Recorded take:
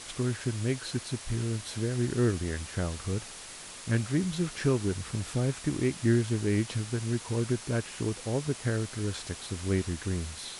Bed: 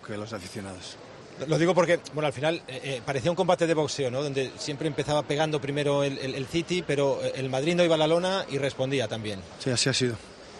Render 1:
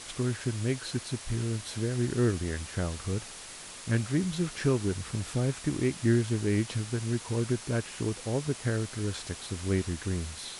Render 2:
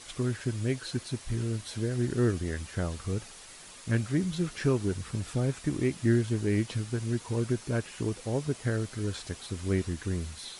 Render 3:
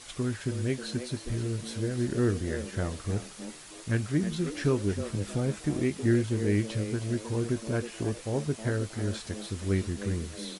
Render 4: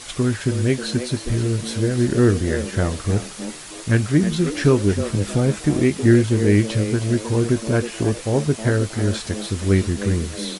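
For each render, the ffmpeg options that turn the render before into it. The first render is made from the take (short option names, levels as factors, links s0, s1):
-af anull
-af "afftdn=nr=6:nf=-45"
-filter_complex "[0:a]asplit=2[s0][s1];[s1]adelay=20,volume=0.237[s2];[s0][s2]amix=inputs=2:normalize=0,asplit=4[s3][s4][s5][s6];[s4]adelay=317,afreqshift=110,volume=0.266[s7];[s5]adelay=634,afreqshift=220,volume=0.0851[s8];[s6]adelay=951,afreqshift=330,volume=0.0272[s9];[s3][s7][s8][s9]amix=inputs=4:normalize=0"
-af "volume=3.35"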